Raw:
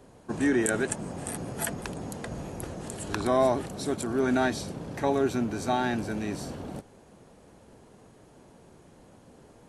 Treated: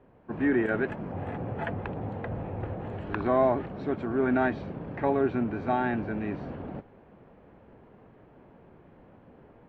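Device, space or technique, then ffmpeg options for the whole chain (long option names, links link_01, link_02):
action camera in a waterproof case: -filter_complex "[0:a]asettb=1/sr,asplit=3[link_01][link_02][link_03];[link_01]atrim=end=1.124[link_04];[link_02]atrim=start=1.12:end=3.01,asetpts=PTS-STARTPTS,afade=type=in:duration=0.004:curve=qsin,afade=type=out:start_time=1.886:duration=0.004:curve=qsin,equalizer=frequency=100:width_type=o:width=0.33:gain=12,equalizer=frequency=500:width_type=o:width=0.33:gain=4,equalizer=frequency=800:width_type=o:width=0.33:gain=5,equalizer=frequency=5000:width_type=o:width=0.33:gain=-6[link_05];[link_03]atrim=start=3.006[link_06];[link_04][link_05]acrossfade=duration=0.004:curve1=hsin:curve2=qsin[link_07];[link_07][link_06]acrossfade=duration=0.004:curve1=qsin:curve2=hsin,lowpass=frequency=2500:width=0.5412,lowpass=frequency=2500:width=1.3066,dynaudnorm=framelen=230:gausssize=3:maxgain=5dB,volume=-5dB" -ar 24000 -c:a aac -b:a 64k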